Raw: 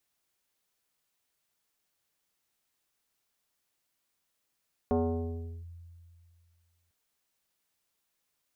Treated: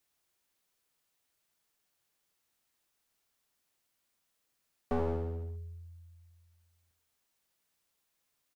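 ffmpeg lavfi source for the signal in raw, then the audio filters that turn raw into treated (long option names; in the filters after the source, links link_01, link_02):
-f lavfi -i "aevalsrc='0.075*pow(10,-3*t/2.29)*sin(2*PI*85.3*t+1.8*clip(1-t/0.74,0,1)*sin(2*PI*3.86*85.3*t))':duration=2:sample_rate=44100"
-filter_complex "[0:a]asplit=2[link_01][link_02];[link_02]adelay=84,lowpass=frequency=2000:poles=1,volume=-8dB,asplit=2[link_03][link_04];[link_04]adelay=84,lowpass=frequency=2000:poles=1,volume=0.37,asplit=2[link_05][link_06];[link_06]adelay=84,lowpass=frequency=2000:poles=1,volume=0.37,asplit=2[link_07][link_08];[link_08]adelay=84,lowpass=frequency=2000:poles=1,volume=0.37[link_09];[link_03][link_05][link_07][link_09]amix=inputs=4:normalize=0[link_10];[link_01][link_10]amix=inputs=2:normalize=0,aeval=exprs='clip(val(0),-1,0.0133)':channel_layout=same"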